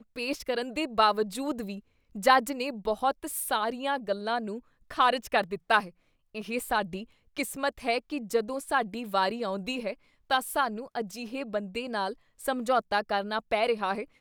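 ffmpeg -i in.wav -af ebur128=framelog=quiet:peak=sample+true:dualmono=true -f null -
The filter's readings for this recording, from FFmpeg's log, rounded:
Integrated loudness:
  I:         -26.2 LUFS
  Threshold: -36.6 LUFS
Loudness range:
  LRA:         3.4 LU
  Threshold: -46.8 LUFS
  LRA low:   -28.4 LUFS
  LRA high:  -24.9 LUFS
Sample peak:
  Peak:       -7.0 dBFS
True peak:
  Peak:       -6.9 dBFS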